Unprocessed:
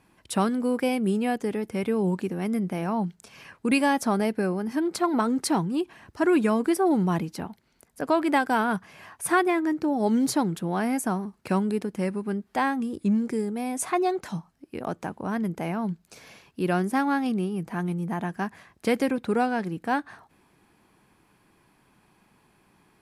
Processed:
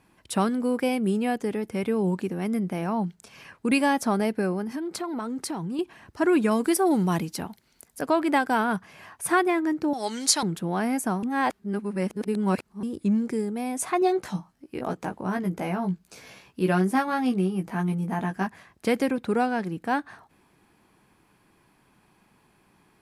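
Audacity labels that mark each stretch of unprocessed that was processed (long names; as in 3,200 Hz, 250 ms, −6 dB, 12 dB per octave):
4.630000	5.790000	downward compressor, threshold −28 dBFS
6.510000	8.060000	high-shelf EQ 3,400 Hz +9 dB
9.930000	10.430000	meter weighting curve ITU-R 468
11.230000	12.830000	reverse
14.000000	18.470000	double-tracking delay 16 ms −4 dB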